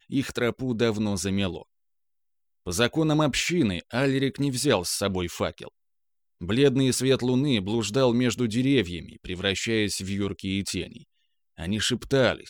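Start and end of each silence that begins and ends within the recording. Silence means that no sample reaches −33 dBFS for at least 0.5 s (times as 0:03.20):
0:01.62–0:02.67
0:05.68–0:06.41
0:10.97–0:11.60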